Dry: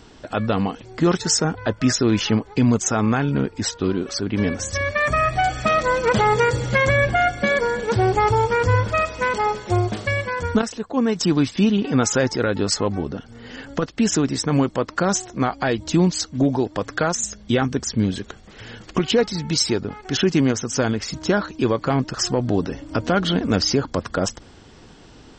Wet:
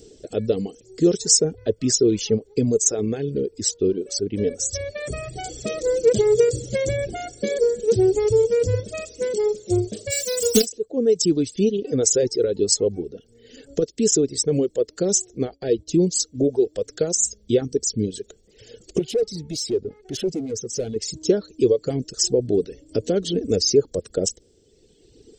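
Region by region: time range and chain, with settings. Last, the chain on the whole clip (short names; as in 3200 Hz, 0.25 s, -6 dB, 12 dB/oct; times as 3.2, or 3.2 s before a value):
10.1–10.65 spectral whitening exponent 0.3 + comb 4 ms, depth 85%
15.45–16 expander -32 dBFS + air absorption 98 m
18.99–20.96 overloaded stage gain 21.5 dB + air absorption 83 m
whole clip: reverb removal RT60 1.9 s; EQ curve 270 Hz 0 dB, 440 Hz +13 dB, 980 Hz -22 dB, 8200 Hz +12 dB; gain -4 dB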